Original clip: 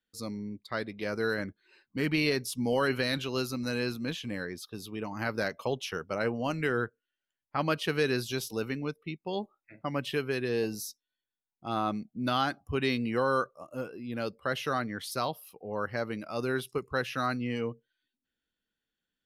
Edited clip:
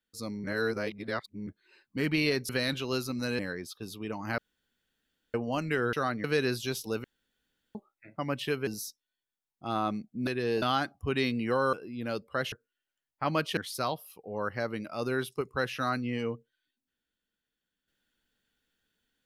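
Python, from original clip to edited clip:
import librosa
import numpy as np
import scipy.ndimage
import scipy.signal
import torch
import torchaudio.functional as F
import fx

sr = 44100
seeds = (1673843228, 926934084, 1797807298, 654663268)

y = fx.edit(x, sr, fx.reverse_span(start_s=0.44, length_s=1.03),
    fx.cut(start_s=2.49, length_s=0.44),
    fx.cut(start_s=3.83, length_s=0.48),
    fx.room_tone_fill(start_s=5.3, length_s=0.96),
    fx.swap(start_s=6.85, length_s=1.05, other_s=14.63, other_length_s=0.31),
    fx.room_tone_fill(start_s=8.7, length_s=0.71),
    fx.move(start_s=10.33, length_s=0.35, to_s=12.28),
    fx.cut(start_s=13.39, length_s=0.45), tone=tone)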